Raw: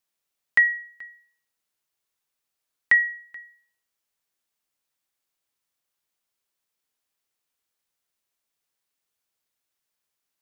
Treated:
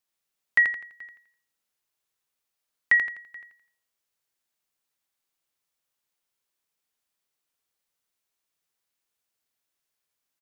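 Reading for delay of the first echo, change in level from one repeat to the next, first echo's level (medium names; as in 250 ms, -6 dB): 84 ms, -9.0 dB, -5.0 dB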